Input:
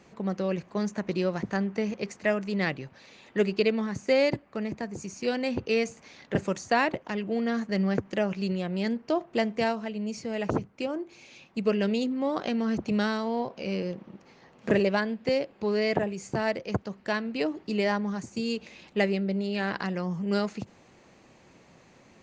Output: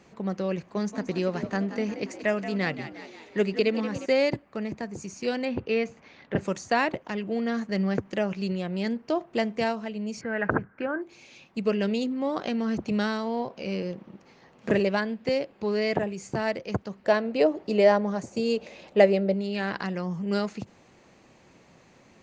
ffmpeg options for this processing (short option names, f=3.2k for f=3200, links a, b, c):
-filter_complex "[0:a]asettb=1/sr,asplit=3[a][b][c];[a]atrim=end=0.574[d];[b]atrim=start=0.57:end=4.06,asetpts=PTS-STARTPTS,afade=t=in:d=0.004:c=qsin,afade=t=out:st=3.486:d=0.004:c=qsin,asplit=7[e][f][g][h][i][j][k];[f]adelay=178,afreqshift=53,volume=-12dB[l];[g]adelay=356,afreqshift=106,volume=-17.2dB[m];[h]adelay=534,afreqshift=159,volume=-22.4dB[n];[i]adelay=712,afreqshift=212,volume=-27.6dB[o];[j]adelay=890,afreqshift=265,volume=-32.8dB[p];[k]adelay=1068,afreqshift=318,volume=-38dB[q];[e][l][m][n][o][p][q]amix=inputs=7:normalize=0,atrim=end_sample=153909[r];[c]atrim=start=4.056[s];[d][r]acrossfade=d=0.004:c1=hsin:c2=qsin[t];[t][s]acrossfade=d=0.004:c1=qsin:c2=hsin,asettb=1/sr,asplit=3[u][v][w];[u]atrim=end=5.454[x];[v]atrim=start=5.45:end=6.41,asetpts=PTS-STARTPTS,afade=t=in:d=0.004:c=qsin,afade=t=out:st=0.956:d=0.004:c=qsin,lowpass=3.3k[y];[w]atrim=start=6.406[z];[x][y]acrossfade=d=0.004:c1=hsin:c2=qsin[aa];[aa][z]acrossfade=d=0.004:c1=qsin:c2=hsin,asettb=1/sr,asplit=3[ab][ac][ad];[ab]atrim=end=10.214[ae];[ac]atrim=start=10.21:end=11.02,asetpts=PTS-STARTPTS,afade=t=in:d=0.004:c=qsin,afade=t=out:st=0.806:d=0.004:c=qsin,lowpass=f=1.6k:t=q:w=9.2[af];[ad]atrim=start=11.016[ag];[ae][af]acrossfade=d=0.004:c1=hsin:c2=qsin[ah];[ah][ag]acrossfade=d=0.004:c1=qsin:c2=hsin,asettb=1/sr,asplit=3[ai][aj][ak];[ai]atrim=end=17.044[al];[aj]atrim=start=17.04:end=19.34,asetpts=PTS-STARTPTS,afade=t=in:d=0.004:c=qsin,afade=t=out:st=2.296:d=0.004:c=qsin,equalizer=f=580:w=1.4:g=12[am];[ak]atrim=start=19.336[an];[al][am]acrossfade=d=0.004:c1=hsin:c2=qsin[ao];[ao][an]acrossfade=d=0.004:c1=qsin:c2=hsin"